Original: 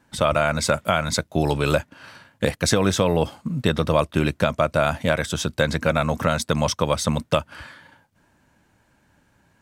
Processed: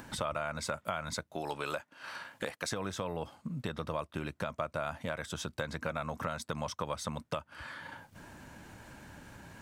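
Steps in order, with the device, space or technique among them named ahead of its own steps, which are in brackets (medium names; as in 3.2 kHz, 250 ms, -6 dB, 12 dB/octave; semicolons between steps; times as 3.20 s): 1.35–2.72 s: high-pass 490 Hz 6 dB/octave; upward and downward compression (upward compressor, threshold -34 dBFS; compression 4:1, threshold -34 dBFS, peak gain reduction 17.5 dB); dynamic bell 1.1 kHz, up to +6 dB, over -48 dBFS, Q 0.95; trim -3.5 dB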